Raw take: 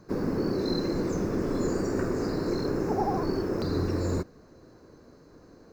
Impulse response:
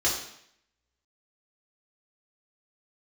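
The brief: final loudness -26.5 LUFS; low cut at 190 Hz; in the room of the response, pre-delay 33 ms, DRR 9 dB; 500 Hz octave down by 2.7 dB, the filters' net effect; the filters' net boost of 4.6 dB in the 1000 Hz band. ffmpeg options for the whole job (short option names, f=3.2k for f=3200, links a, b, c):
-filter_complex "[0:a]highpass=190,equalizer=f=500:t=o:g=-5,equalizer=f=1k:t=o:g=8,asplit=2[a][b];[1:a]atrim=start_sample=2205,adelay=33[c];[b][c]afir=irnorm=-1:irlink=0,volume=-20dB[d];[a][d]amix=inputs=2:normalize=0,volume=3.5dB"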